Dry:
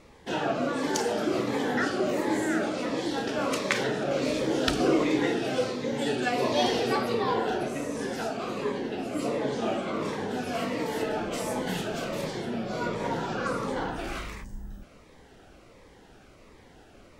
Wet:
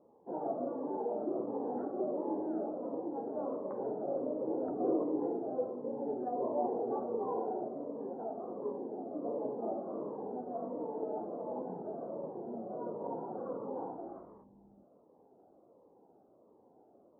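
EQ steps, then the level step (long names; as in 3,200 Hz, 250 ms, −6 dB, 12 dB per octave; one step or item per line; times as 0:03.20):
high-pass filter 300 Hz 12 dB per octave
Butterworth low-pass 920 Hz 36 dB per octave
high-frequency loss of the air 480 metres
−5.0 dB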